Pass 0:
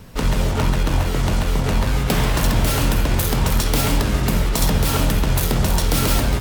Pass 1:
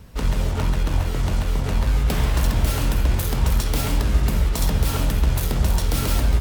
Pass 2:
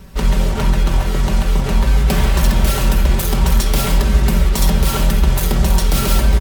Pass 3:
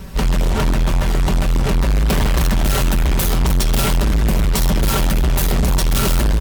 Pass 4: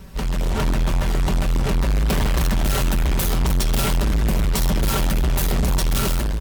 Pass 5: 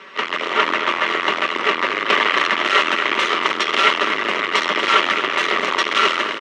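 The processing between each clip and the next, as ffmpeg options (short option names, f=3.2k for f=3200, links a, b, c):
-af "equalizer=f=60:t=o:w=0.66:g=13.5,volume=-6dB"
-af "aecho=1:1:5.2:0.65,volume=5dB"
-af "asoftclip=type=tanh:threshold=-18.5dB,volume=6dB"
-af "dynaudnorm=f=120:g=7:m=4dB,volume=-7.5dB"
-af "highpass=f=370:w=0.5412,highpass=f=370:w=1.3066,equalizer=f=510:t=q:w=4:g=-4,equalizer=f=770:t=q:w=4:g=-8,equalizer=f=1.2k:t=q:w=4:g=10,equalizer=f=2k:t=q:w=4:g=10,equalizer=f=2.9k:t=q:w=4:g=6,equalizer=f=4.7k:t=q:w=4:g=-7,lowpass=f=4.8k:w=0.5412,lowpass=f=4.8k:w=1.3066,aecho=1:1:234:0.282,volume=8dB"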